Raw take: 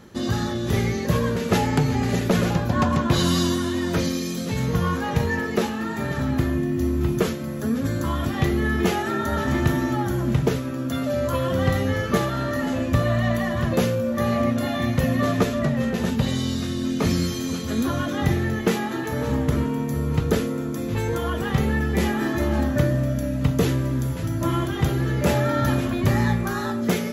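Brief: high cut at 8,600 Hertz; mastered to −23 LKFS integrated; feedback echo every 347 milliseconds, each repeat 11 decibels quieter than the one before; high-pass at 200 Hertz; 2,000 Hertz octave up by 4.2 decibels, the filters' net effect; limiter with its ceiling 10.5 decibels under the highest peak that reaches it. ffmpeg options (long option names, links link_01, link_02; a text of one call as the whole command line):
ffmpeg -i in.wav -af "highpass=200,lowpass=8600,equalizer=frequency=2000:width_type=o:gain=5,alimiter=limit=-17.5dB:level=0:latency=1,aecho=1:1:347|694|1041:0.282|0.0789|0.0221,volume=3.5dB" out.wav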